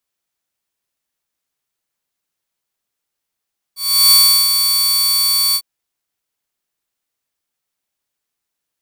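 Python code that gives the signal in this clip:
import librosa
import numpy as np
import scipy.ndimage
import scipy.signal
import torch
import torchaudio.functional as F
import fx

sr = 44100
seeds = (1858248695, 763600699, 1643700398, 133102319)

y = fx.adsr_tone(sr, wave='saw', hz=4520.0, attack_ms=356.0, decay_ms=358.0, sustain_db=-6.5, held_s=1.79, release_ms=62.0, level_db=-3.5)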